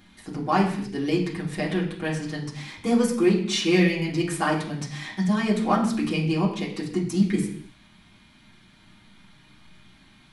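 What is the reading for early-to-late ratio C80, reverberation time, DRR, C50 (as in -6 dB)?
10.0 dB, not exponential, -5.5 dB, 7.5 dB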